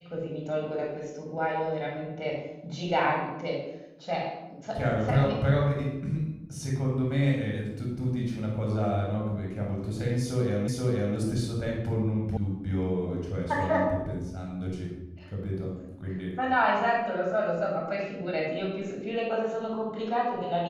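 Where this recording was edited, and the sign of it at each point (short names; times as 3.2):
10.68 repeat of the last 0.48 s
12.37 sound cut off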